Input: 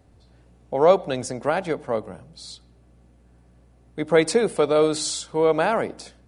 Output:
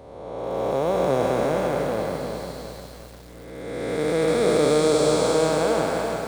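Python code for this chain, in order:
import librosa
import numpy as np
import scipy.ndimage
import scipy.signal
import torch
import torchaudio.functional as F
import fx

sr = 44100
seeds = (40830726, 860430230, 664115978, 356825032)

y = fx.spec_blur(x, sr, span_ms=843.0)
y = fx.echo_crushed(y, sr, ms=350, feedback_pct=55, bits=8, wet_db=-6.5)
y = y * 10.0 ** (6.0 / 20.0)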